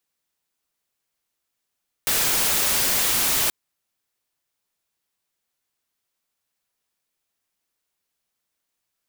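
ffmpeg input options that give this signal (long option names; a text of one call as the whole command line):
ffmpeg -f lavfi -i "anoisesrc=color=white:amplitude=0.154:duration=1.43:sample_rate=44100:seed=1" out.wav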